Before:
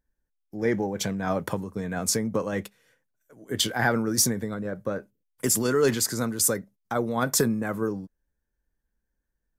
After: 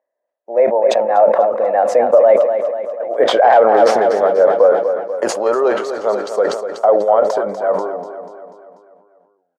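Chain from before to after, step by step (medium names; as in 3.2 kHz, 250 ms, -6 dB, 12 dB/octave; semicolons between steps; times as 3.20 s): Doppler pass-by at 3.54 s, 33 m/s, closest 19 m; peaking EQ 700 Hz +8 dB 0.75 oct; in parallel at +1 dB: compression, threshold -40 dBFS, peak gain reduction 23 dB; on the sum: tilt EQ +2 dB/octave; hard clipper -18.5 dBFS, distortion -8 dB; ladder band-pass 630 Hz, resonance 65%; on a send: feedback delay 244 ms, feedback 53%, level -9.5 dB; on the sum: loudness maximiser +30 dB; decay stretcher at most 72 dB/s; trim -1 dB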